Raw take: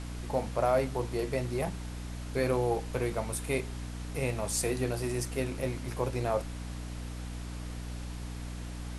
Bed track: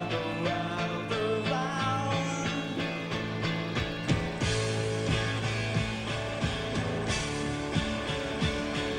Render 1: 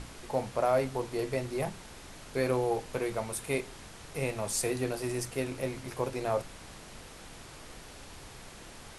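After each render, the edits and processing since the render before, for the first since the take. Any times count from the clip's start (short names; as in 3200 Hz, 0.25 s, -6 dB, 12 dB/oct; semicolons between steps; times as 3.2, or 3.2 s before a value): notches 60/120/180/240/300 Hz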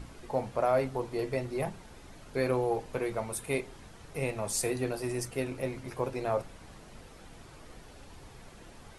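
denoiser 8 dB, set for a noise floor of -49 dBFS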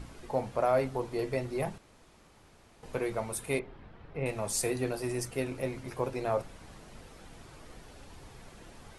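1.78–2.83 room tone; 3.59–4.26 air absorption 380 m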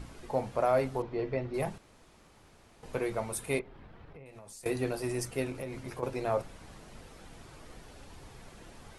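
1.02–1.54 air absorption 250 m; 3.61–4.66 compressor 10:1, threshold -46 dBFS; 5.5–6.03 compressor 5:1, threshold -34 dBFS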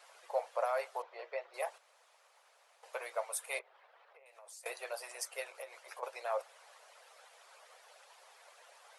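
elliptic high-pass 530 Hz, stop band 50 dB; harmonic-percussive split harmonic -10 dB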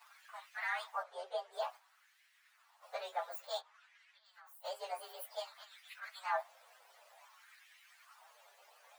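inharmonic rescaling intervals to 124%; LFO high-pass sine 0.55 Hz 400–2100 Hz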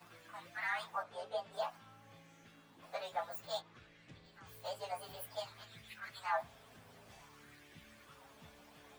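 add bed track -31 dB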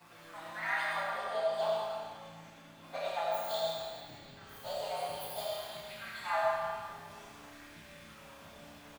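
doubler 31 ms -3.5 dB; digital reverb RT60 1.9 s, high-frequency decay 1×, pre-delay 25 ms, DRR -3.5 dB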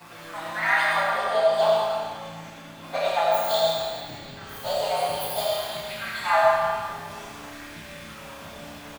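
gain +12 dB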